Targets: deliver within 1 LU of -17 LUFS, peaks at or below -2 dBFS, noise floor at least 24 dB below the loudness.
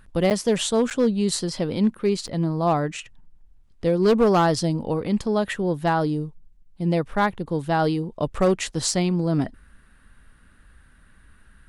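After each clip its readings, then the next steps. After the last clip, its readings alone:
clipped 0.5%; flat tops at -12.5 dBFS; dropouts 3; longest dropout 8.1 ms; loudness -23.0 LUFS; peak -12.5 dBFS; loudness target -17.0 LUFS
-> clip repair -12.5 dBFS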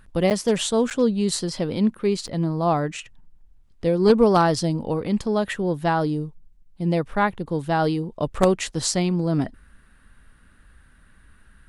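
clipped 0.0%; dropouts 3; longest dropout 8.1 ms
-> interpolate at 0.3/0.9/2.27, 8.1 ms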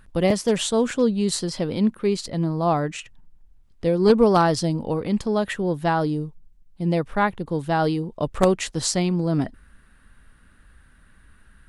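dropouts 0; loudness -22.5 LUFS; peak -3.5 dBFS; loudness target -17.0 LUFS
-> gain +5.5 dB; limiter -2 dBFS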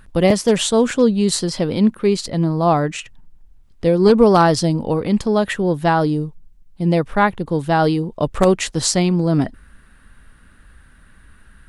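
loudness -17.5 LUFS; peak -2.0 dBFS; noise floor -49 dBFS

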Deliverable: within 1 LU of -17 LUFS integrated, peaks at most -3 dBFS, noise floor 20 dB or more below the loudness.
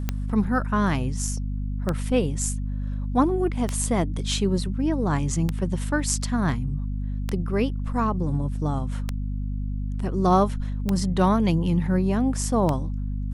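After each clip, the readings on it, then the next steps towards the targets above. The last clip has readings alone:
clicks 8; hum 50 Hz; harmonics up to 250 Hz; hum level -25 dBFS; loudness -25.0 LUFS; peak -7.0 dBFS; loudness target -17.0 LUFS
-> de-click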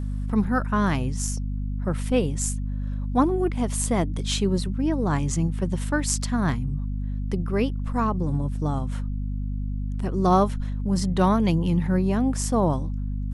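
clicks 0; hum 50 Hz; harmonics up to 250 Hz; hum level -25 dBFS
-> notches 50/100/150/200/250 Hz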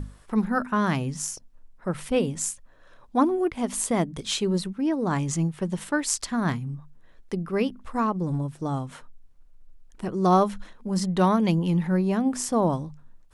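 hum none; loudness -26.0 LUFS; peak -8.0 dBFS; loudness target -17.0 LUFS
-> gain +9 dB; limiter -3 dBFS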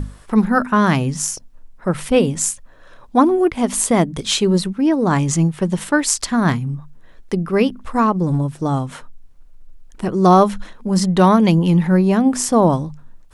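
loudness -17.0 LUFS; peak -3.0 dBFS; noise floor -44 dBFS

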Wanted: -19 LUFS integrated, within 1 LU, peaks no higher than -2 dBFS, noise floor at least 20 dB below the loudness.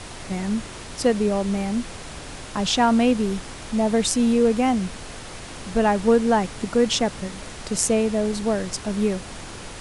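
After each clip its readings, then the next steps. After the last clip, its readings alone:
noise floor -38 dBFS; noise floor target -43 dBFS; loudness -22.5 LUFS; peak -4.5 dBFS; loudness target -19.0 LUFS
-> noise print and reduce 6 dB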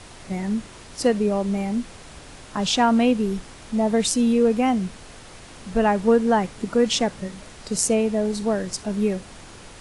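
noise floor -43 dBFS; loudness -22.5 LUFS; peak -4.5 dBFS; loudness target -19.0 LUFS
-> gain +3.5 dB; limiter -2 dBFS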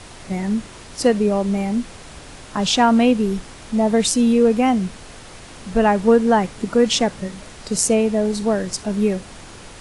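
loudness -19.0 LUFS; peak -2.0 dBFS; noise floor -40 dBFS

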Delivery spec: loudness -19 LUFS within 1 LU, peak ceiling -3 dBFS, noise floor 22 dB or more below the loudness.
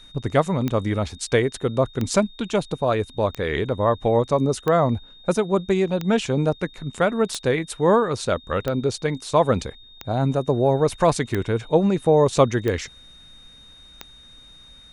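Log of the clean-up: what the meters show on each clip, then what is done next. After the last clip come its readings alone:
clicks 11; steady tone 3700 Hz; tone level -46 dBFS; loudness -22.0 LUFS; peak -4.0 dBFS; loudness target -19.0 LUFS
-> de-click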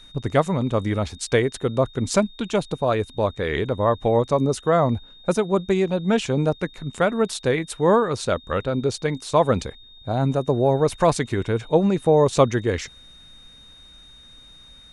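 clicks 0; steady tone 3700 Hz; tone level -46 dBFS
-> notch 3700 Hz, Q 30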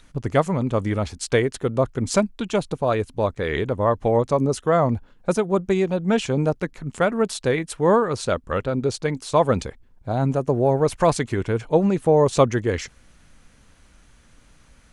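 steady tone none; loudness -22.0 LUFS; peak -4.0 dBFS; loudness target -19.0 LUFS
-> gain +3 dB; limiter -3 dBFS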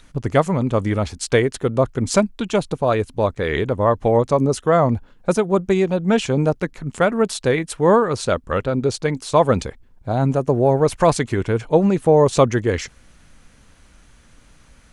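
loudness -19.0 LUFS; peak -3.0 dBFS; noise floor -51 dBFS

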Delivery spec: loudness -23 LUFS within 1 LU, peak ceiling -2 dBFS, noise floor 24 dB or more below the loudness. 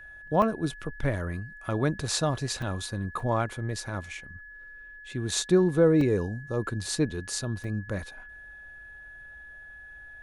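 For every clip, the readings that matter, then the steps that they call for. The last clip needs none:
dropouts 5; longest dropout 3.0 ms; steady tone 1700 Hz; tone level -44 dBFS; loudness -28.5 LUFS; peak -10.0 dBFS; loudness target -23.0 LUFS
-> interpolate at 0.42/2.62/3.2/6.01/7.64, 3 ms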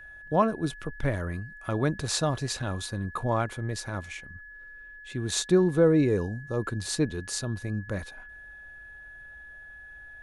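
dropouts 0; steady tone 1700 Hz; tone level -44 dBFS
-> notch 1700 Hz, Q 30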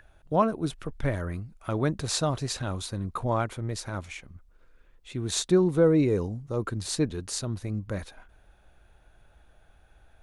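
steady tone none; loudness -28.5 LUFS; peak -10.0 dBFS; loudness target -23.0 LUFS
-> gain +5.5 dB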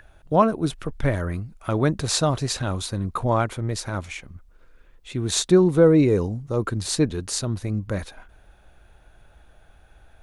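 loudness -23.0 LUFS; peak -4.5 dBFS; noise floor -54 dBFS

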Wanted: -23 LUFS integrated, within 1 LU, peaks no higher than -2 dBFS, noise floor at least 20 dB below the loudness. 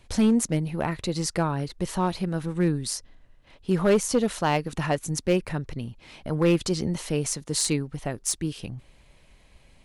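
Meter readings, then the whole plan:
clipped 0.6%; flat tops at -14.5 dBFS; loudness -26.0 LUFS; peak -14.5 dBFS; loudness target -23.0 LUFS
-> clip repair -14.5 dBFS; gain +3 dB

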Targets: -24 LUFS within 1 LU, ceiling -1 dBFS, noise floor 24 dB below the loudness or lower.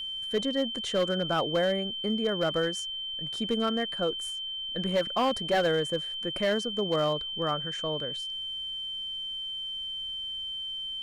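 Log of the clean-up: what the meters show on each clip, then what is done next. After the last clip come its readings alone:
clipped 0.8%; flat tops at -20.5 dBFS; steady tone 3100 Hz; tone level -33 dBFS; loudness -29.5 LUFS; peak -20.5 dBFS; loudness target -24.0 LUFS
-> clip repair -20.5 dBFS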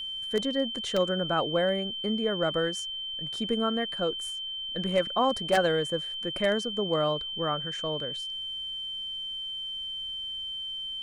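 clipped 0.0%; steady tone 3100 Hz; tone level -33 dBFS
-> notch 3100 Hz, Q 30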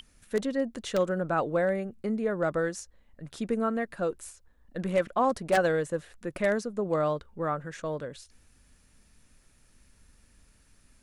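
steady tone none; loudness -29.5 LUFS; peak -12.0 dBFS; loudness target -24.0 LUFS
-> gain +5.5 dB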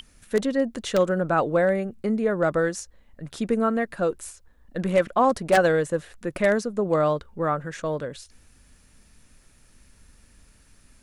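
loudness -24.0 LUFS; peak -6.5 dBFS; noise floor -57 dBFS

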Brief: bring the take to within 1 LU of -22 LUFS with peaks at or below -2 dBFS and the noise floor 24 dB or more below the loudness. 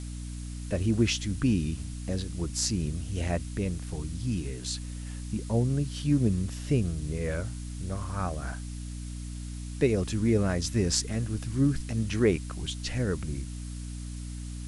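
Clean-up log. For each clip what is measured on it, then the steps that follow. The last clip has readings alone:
hum 60 Hz; harmonics up to 300 Hz; hum level -35 dBFS; noise floor -38 dBFS; noise floor target -55 dBFS; loudness -30.5 LUFS; peak -9.0 dBFS; loudness target -22.0 LUFS
-> de-hum 60 Hz, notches 5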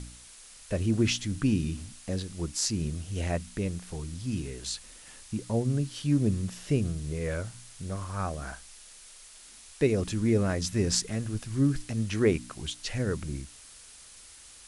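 hum none; noise floor -51 dBFS; noise floor target -54 dBFS
-> denoiser 6 dB, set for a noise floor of -51 dBFS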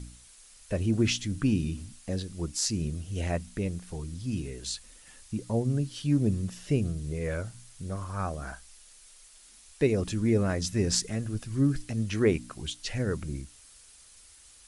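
noise floor -55 dBFS; loudness -30.5 LUFS; peak -9.5 dBFS; loudness target -22.0 LUFS
-> gain +8.5 dB; limiter -2 dBFS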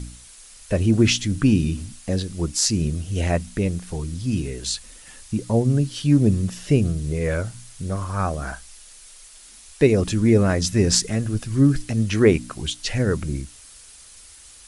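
loudness -22.0 LUFS; peak -2.0 dBFS; noise floor -46 dBFS

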